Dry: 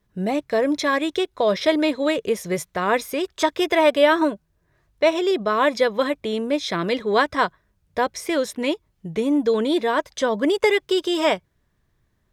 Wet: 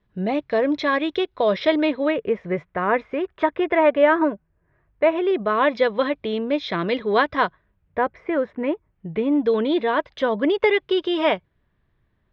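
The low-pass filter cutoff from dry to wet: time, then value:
low-pass filter 24 dB per octave
0:01.72 3,900 Hz
0:02.29 2,300 Hz
0:05.05 2,300 Hz
0:05.81 3,800 Hz
0:07.42 3,800 Hz
0:08.20 2,000 Hz
0:08.73 2,000 Hz
0:09.46 3,500 Hz

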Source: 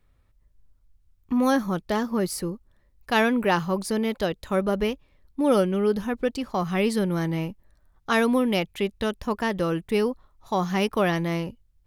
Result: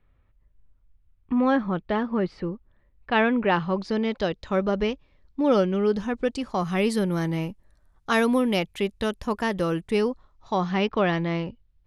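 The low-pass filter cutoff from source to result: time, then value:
low-pass filter 24 dB per octave
0:03.38 3,200 Hz
0:04.18 5,900 Hz
0:05.50 5,900 Hz
0:06.80 12,000 Hz
0:09.76 12,000 Hz
0:10.74 4,400 Hz

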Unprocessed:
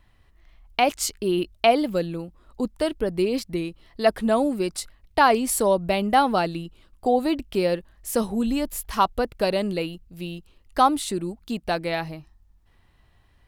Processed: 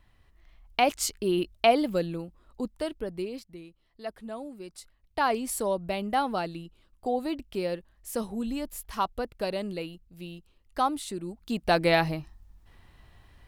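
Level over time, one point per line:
0:02.11 −3 dB
0:03.19 −10 dB
0:03.54 −17.5 dB
0:04.60 −17.5 dB
0:05.28 −8 dB
0:11.20 −8 dB
0:11.85 +4.5 dB

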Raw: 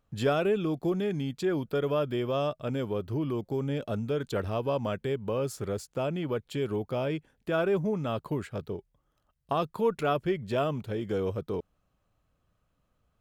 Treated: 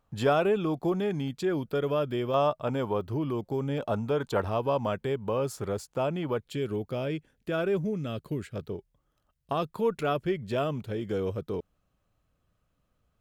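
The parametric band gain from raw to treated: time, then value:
parametric band 910 Hz 0.97 octaves
+7 dB
from 0:01.28 +0.5 dB
from 0:02.34 +11 dB
from 0:03.01 +3.5 dB
from 0:03.78 +12 dB
from 0:04.49 +5.5 dB
from 0:06.43 −5.5 dB
from 0:07.84 −13.5 dB
from 0:08.56 −2 dB

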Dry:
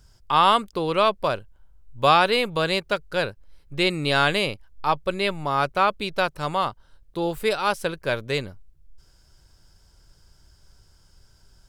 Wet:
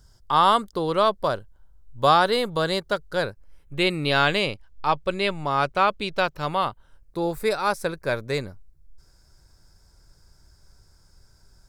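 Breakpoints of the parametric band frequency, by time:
parametric band −15 dB 0.31 octaves
0:03.15 2,500 Hz
0:04.52 13,000 Hz
0:06.13 13,000 Hz
0:07.18 3,000 Hz

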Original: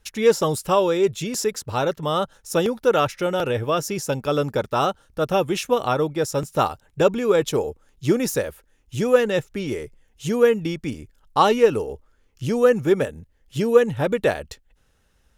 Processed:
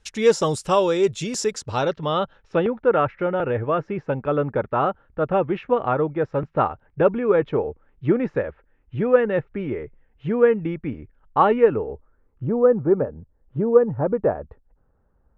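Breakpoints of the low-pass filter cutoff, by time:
low-pass filter 24 dB per octave
0:01.54 8,700 Hz
0:01.96 4,600 Hz
0:02.79 2,100 Hz
0:11.59 2,100 Hz
0:12.53 1,200 Hz

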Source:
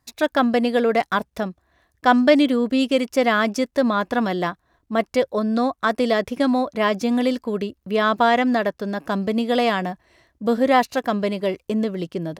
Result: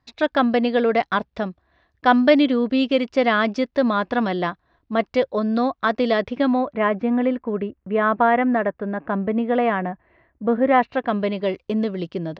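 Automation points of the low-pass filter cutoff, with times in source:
low-pass filter 24 dB per octave
0:06.22 4,500 Hz
0:06.91 2,200 Hz
0:10.59 2,200 Hz
0:11.57 4,800 Hz

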